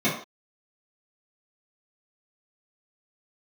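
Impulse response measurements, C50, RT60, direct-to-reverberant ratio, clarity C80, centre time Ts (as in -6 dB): 5.5 dB, no single decay rate, -12.5 dB, 10.0 dB, 33 ms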